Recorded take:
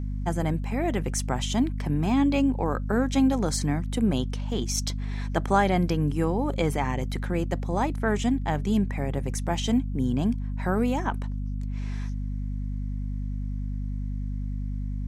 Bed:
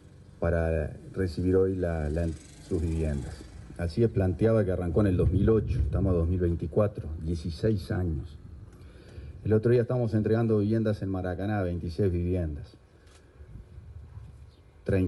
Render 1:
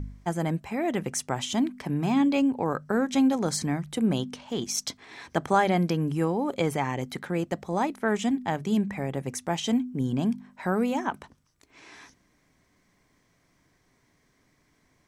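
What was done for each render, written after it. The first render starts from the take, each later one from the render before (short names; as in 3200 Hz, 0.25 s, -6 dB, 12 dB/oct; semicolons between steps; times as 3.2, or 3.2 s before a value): de-hum 50 Hz, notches 5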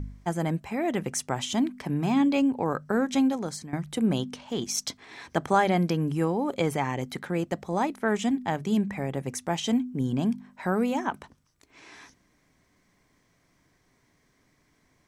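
3.13–3.73 fade out, to -16.5 dB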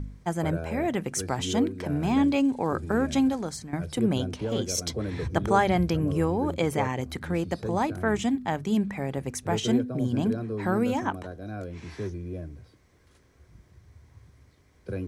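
add bed -7.5 dB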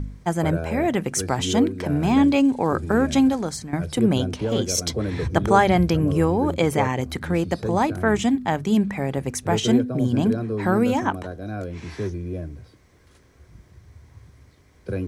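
gain +5.5 dB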